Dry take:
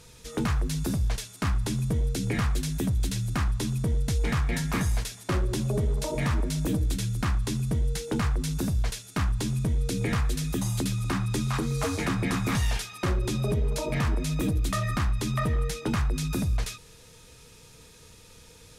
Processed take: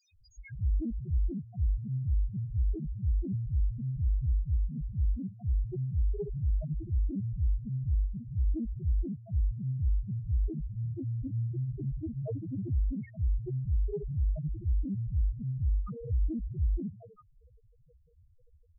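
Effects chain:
three-band delay without the direct sound highs, lows, mids 130/440 ms, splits 150/1,500 Hz
spectral peaks only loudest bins 1
highs frequency-modulated by the lows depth 0.17 ms
level +3.5 dB

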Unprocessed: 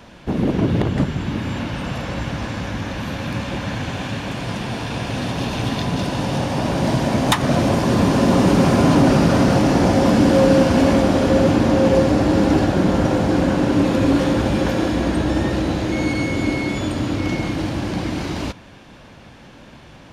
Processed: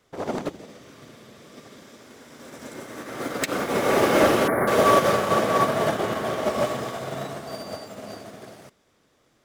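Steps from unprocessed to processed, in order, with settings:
gain on a spectral selection 0:09.54–0:09.95, 1,100–4,300 Hz −28 dB
change of speed 2.13×
expander for the loud parts 2.5 to 1, over −25 dBFS
level −2 dB

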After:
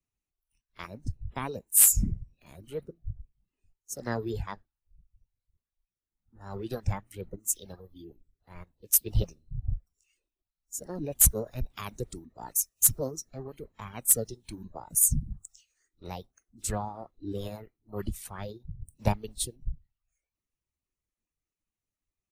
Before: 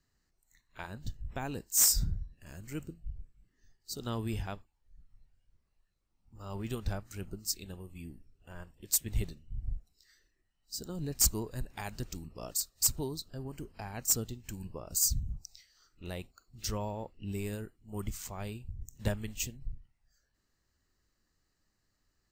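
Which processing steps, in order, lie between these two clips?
reverb reduction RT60 0.9 s
formants moved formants +6 semitones
multiband upward and downward expander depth 40%
level +3 dB

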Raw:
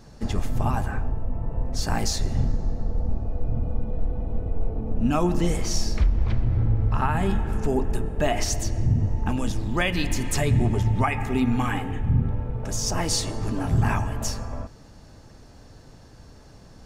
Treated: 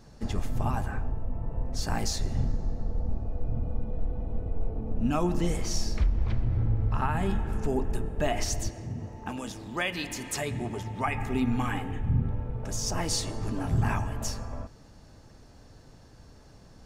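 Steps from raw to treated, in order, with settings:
0:08.70–0:11.06: high-pass filter 350 Hz 6 dB per octave
level −4.5 dB

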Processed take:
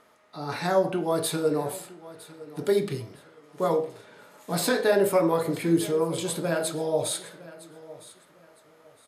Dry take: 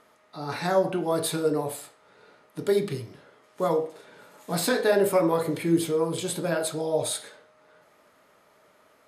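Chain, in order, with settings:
repeating echo 959 ms, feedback 27%, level −18.5 dB

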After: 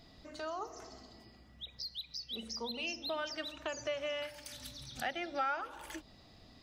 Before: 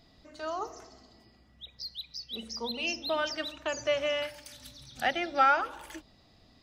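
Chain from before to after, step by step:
downward compressor 2 to 1, threshold −45 dBFS, peak gain reduction 14 dB
level +2 dB

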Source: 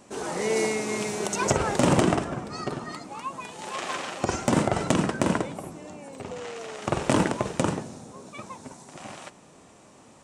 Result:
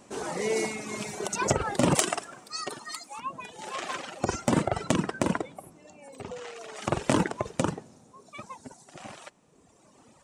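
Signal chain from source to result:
0:01.95–0:03.19: RIAA equalisation recording
reverb reduction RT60 1.9 s
0:06.76–0:07.50: one half of a high-frequency compander encoder only
level −1 dB

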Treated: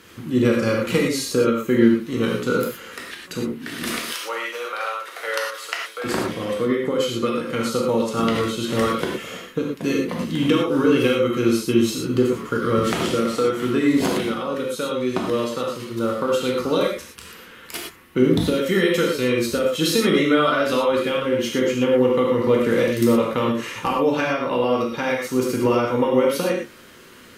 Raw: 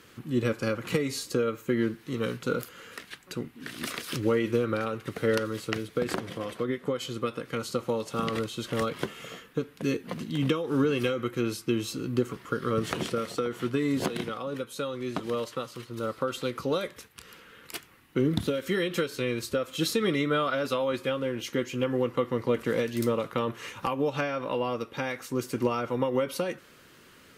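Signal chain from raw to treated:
0:04.03–0:06.04: high-pass filter 680 Hz 24 dB per octave
reverb whose tail is shaped and stops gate 140 ms flat, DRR −1.5 dB
level +5 dB

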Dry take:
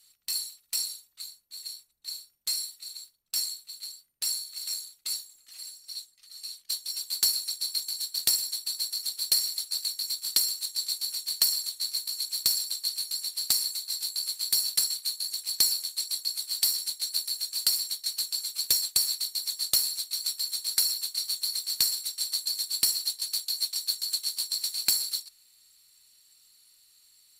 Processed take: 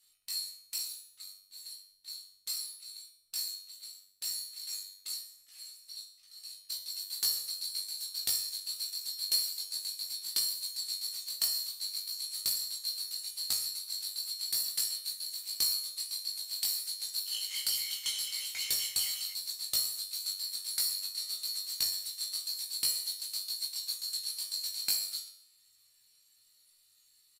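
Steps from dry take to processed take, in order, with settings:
tuned comb filter 97 Hz, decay 0.66 s, harmonics all, mix 80%
0:17.10–0:19.33: delay with pitch and tempo change per echo 158 ms, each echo −6 semitones, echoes 2, each echo −6 dB
double-tracking delay 19 ms −3 dB
level +2 dB

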